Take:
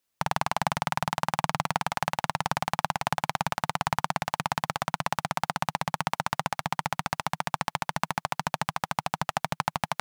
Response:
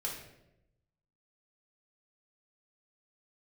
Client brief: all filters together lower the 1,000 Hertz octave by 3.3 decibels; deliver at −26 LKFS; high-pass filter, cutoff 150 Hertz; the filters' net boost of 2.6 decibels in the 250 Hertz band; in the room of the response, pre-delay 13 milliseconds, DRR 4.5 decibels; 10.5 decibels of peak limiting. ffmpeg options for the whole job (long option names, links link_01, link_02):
-filter_complex "[0:a]highpass=150,equalizer=frequency=250:width_type=o:gain=6.5,equalizer=frequency=1000:width_type=o:gain=-4.5,alimiter=limit=-17dB:level=0:latency=1,asplit=2[link_01][link_02];[1:a]atrim=start_sample=2205,adelay=13[link_03];[link_02][link_03]afir=irnorm=-1:irlink=0,volume=-6.5dB[link_04];[link_01][link_04]amix=inputs=2:normalize=0,volume=13dB"